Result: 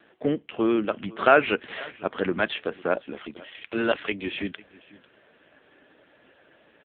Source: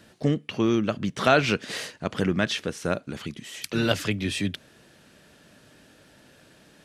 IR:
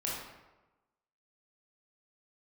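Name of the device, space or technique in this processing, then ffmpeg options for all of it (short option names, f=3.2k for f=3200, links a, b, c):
satellite phone: -af "highpass=330,lowpass=3.2k,aecho=1:1:498:0.0891,volume=4dB" -ar 8000 -c:a libopencore_amrnb -b:a 5900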